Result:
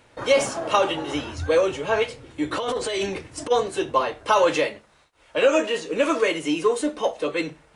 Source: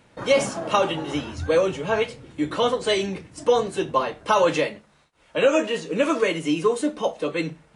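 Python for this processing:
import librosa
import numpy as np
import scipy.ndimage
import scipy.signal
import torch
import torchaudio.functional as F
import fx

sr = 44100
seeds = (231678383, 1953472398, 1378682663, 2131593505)

p1 = 10.0 ** (-24.0 / 20.0) * np.tanh(x / 10.0 ** (-24.0 / 20.0))
p2 = x + (p1 * 10.0 ** (-10.5 / 20.0))
p3 = fx.over_compress(p2, sr, threshold_db=-24.0, ratio=-1.0, at=(2.52, 3.5), fade=0.02)
y = fx.peak_eq(p3, sr, hz=180.0, db=-11.5, octaves=0.72)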